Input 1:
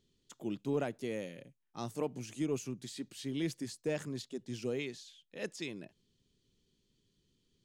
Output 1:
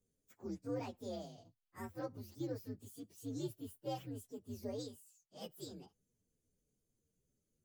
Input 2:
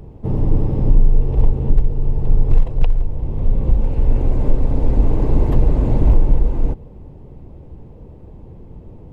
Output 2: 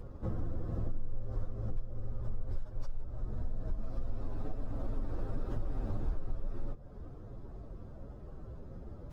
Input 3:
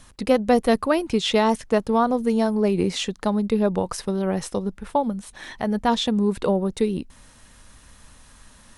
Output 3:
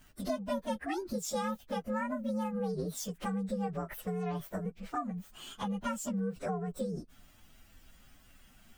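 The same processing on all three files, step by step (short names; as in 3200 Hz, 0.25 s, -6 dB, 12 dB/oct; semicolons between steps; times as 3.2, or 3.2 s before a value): inharmonic rescaling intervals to 128%; compressor 3:1, threshold -30 dBFS; gain -4 dB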